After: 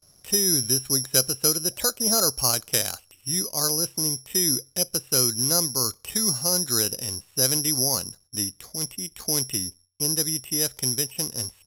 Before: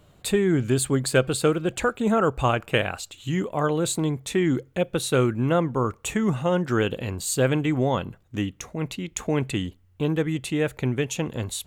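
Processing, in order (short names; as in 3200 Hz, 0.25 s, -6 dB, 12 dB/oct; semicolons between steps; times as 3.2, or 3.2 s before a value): gate with hold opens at -48 dBFS; careless resampling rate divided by 8×, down filtered, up zero stuff; 1.7–2.27 bell 590 Hz +9.5 dB 0.27 oct; downsampling 32000 Hz; gain -8 dB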